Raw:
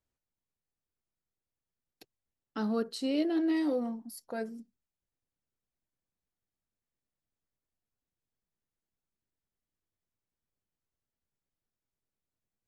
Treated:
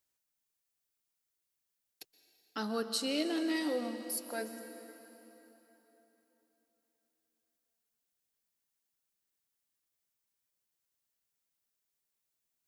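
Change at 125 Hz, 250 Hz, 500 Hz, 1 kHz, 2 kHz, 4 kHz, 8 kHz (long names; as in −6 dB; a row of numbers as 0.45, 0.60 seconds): can't be measured, −5.0 dB, −2.5 dB, 0.0 dB, +3.5 dB, +6.0 dB, +10.0 dB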